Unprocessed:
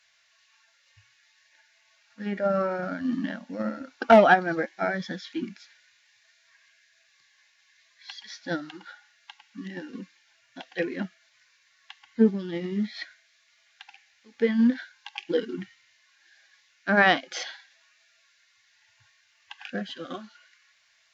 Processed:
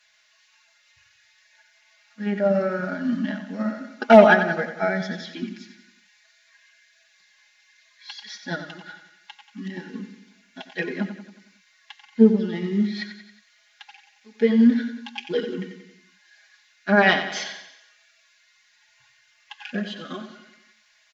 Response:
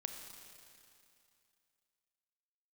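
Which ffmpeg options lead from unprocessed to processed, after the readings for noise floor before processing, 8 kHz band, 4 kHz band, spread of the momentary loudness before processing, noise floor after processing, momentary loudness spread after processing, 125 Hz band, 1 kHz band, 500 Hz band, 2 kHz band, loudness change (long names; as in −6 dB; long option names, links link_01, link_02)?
−65 dBFS, can't be measured, +3.5 dB, 21 LU, −62 dBFS, 20 LU, +5.5 dB, +1.0 dB, +4.5 dB, +3.0 dB, +4.0 dB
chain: -af "aecho=1:1:4.8:0.94,aecho=1:1:91|182|273|364|455|546:0.316|0.164|0.0855|0.0445|0.0231|0.012"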